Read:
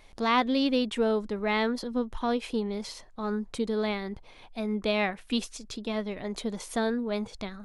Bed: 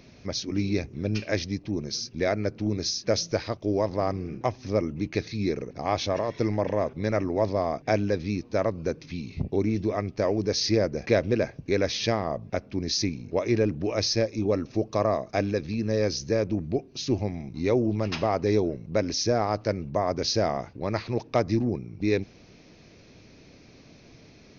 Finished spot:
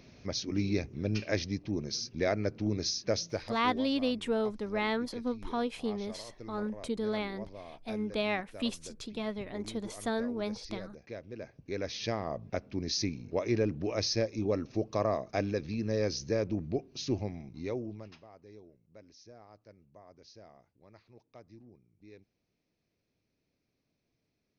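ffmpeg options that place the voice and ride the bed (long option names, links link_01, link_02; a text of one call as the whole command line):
ffmpeg -i stem1.wav -i stem2.wav -filter_complex "[0:a]adelay=3300,volume=-4.5dB[link_01];[1:a]volume=11.5dB,afade=type=out:start_time=2.9:duration=0.97:silence=0.141254,afade=type=in:start_time=11.3:duration=1.18:silence=0.16788,afade=type=out:start_time=17.05:duration=1.16:silence=0.0630957[link_02];[link_01][link_02]amix=inputs=2:normalize=0" out.wav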